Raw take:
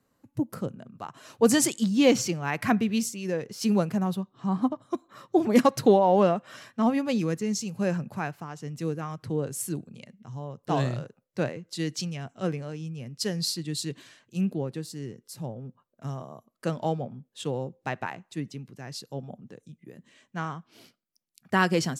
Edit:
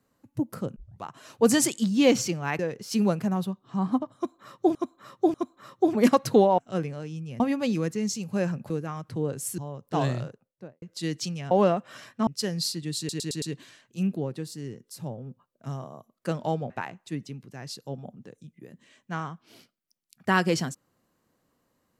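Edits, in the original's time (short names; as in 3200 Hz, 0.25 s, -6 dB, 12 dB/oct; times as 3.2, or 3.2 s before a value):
0.76 tape start 0.27 s
2.59–3.29 cut
4.86–5.45 loop, 3 plays
6.1–6.86 swap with 12.27–13.09
8.16–8.84 cut
9.72–10.34 cut
10.97–11.58 studio fade out
13.8 stutter 0.11 s, 5 plays
17.08–17.95 cut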